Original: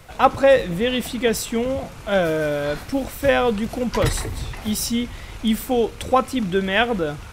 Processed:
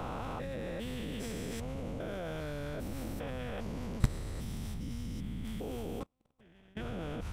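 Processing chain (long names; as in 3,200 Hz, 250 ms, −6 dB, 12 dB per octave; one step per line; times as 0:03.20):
spectrum averaged block by block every 400 ms
0:06.03–0:06.77: noise gate −19 dBFS, range −37 dB
low-shelf EQ 270 Hz +11.5 dB
harmonic and percussive parts rebalanced harmonic −13 dB
0:04.74–0:05.45: bass and treble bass +4 dB, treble −5 dB
output level in coarse steps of 22 dB
level +5.5 dB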